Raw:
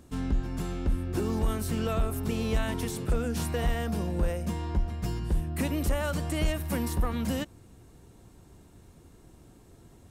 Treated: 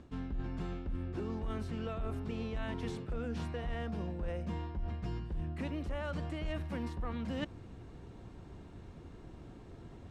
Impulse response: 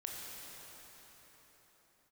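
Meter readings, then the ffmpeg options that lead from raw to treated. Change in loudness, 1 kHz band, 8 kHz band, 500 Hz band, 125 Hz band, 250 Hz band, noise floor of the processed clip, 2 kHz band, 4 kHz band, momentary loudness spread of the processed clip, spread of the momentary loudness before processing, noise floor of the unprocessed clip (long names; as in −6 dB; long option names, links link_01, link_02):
−8.5 dB, −8.0 dB, −22.0 dB, −8.5 dB, −8.5 dB, −8.0 dB, −52 dBFS, −8.5 dB, −10.5 dB, 13 LU, 3 LU, −55 dBFS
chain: -af "lowpass=3500,areverse,acompressor=threshold=-38dB:ratio=10,areverse,volume=3.5dB"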